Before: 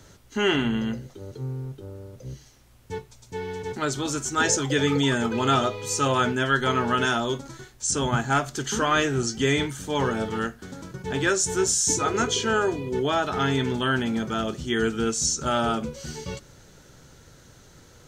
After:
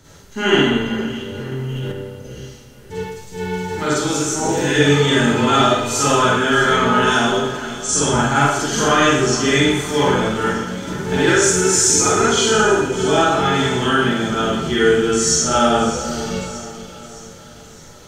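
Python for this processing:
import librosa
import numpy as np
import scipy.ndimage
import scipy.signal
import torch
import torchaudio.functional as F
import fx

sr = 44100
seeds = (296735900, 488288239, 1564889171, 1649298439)

y = fx.high_shelf(x, sr, hz=10000.0, db=6.5, at=(2.96, 3.8))
y = fx.spec_repair(y, sr, seeds[0], start_s=4.36, length_s=0.34, low_hz=1100.0, high_hz=11000.0, source='both')
y = fx.leveller(y, sr, passes=1, at=(10.8, 11.26))
y = fx.echo_split(y, sr, split_hz=2500.0, low_ms=464, high_ms=616, feedback_pct=52, wet_db=-14)
y = fx.rev_schroeder(y, sr, rt60_s=0.86, comb_ms=38, drr_db=-8.0)
y = fx.env_flatten(y, sr, amount_pct=100, at=(1.52, 1.92))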